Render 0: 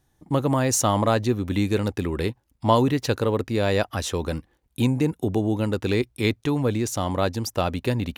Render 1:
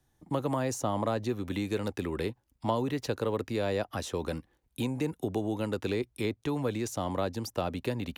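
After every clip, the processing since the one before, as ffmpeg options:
-filter_complex "[0:a]acrossover=split=140|370|970[a][b][c][d];[a]acompressor=threshold=-38dB:ratio=4[e];[b]acompressor=threshold=-30dB:ratio=4[f];[c]acompressor=threshold=-25dB:ratio=4[g];[d]acompressor=threshold=-34dB:ratio=4[h];[e][f][g][h]amix=inputs=4:normalize=0,volume=-4.5dB"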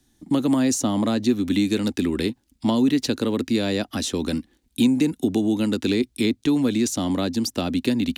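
-af "equalizer=f=125:t=o:w=1:g=-7,equalizer=f=250:t=o:w=1:g=12,equalizer=f=500:t=o:w=1:g=-6,equalizer=f=1k:t=o:w=1:g=-6,equalizer=f=4k:t=o:w=1:g=6,equalizer=f=8k:t=o:w=1:g=5,volume=7dB"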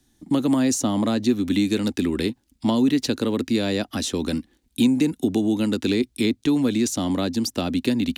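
-af anull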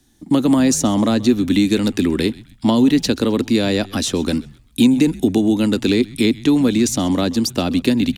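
-filter_complex "[0:a]asplit=4[a][b][c][d];[b]adelay=130,afreqshift=-100,volume=-21dB[e];[c]adelay=260,afreqshift=-200,volume=-29.6dB[f];[d]adelay=390,afreqshift=-300,volume=-38.3dB[g];[a][e][f][g]amix=inputs=4:normalize=0,volume=5.5dB"

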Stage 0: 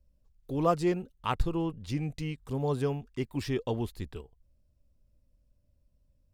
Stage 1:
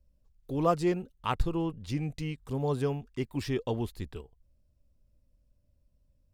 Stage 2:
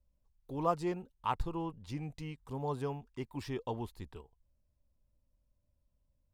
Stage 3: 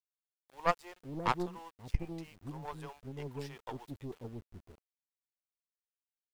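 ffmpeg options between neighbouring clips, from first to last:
-af anull
-af "equalizer=f=930:t=o:w=0.64:g=9,volume=-8dB"
-filter_complex "[0:a]acrossover=split=510[a][b];[a]adelay=540[c];[c][b]amix=inputs=2:normalize=0,aeval=exprs='val(0)*gte(abs(val(0)),0.00316)':c=same,aeval=exprs='0.119*(cos(1*acos(clip(val(0)/0.119,-1,1)))-cos(1*PI/2))+0.0531*(cos(2*acos(clip(val(0)/0.119,-1,1)))-cos(2*PI/2))+0.0106*(cos(7*acos(clip(val(0)/0.119,-1,1)))-cos(7*PI/2))':c=same,volume=3dB"

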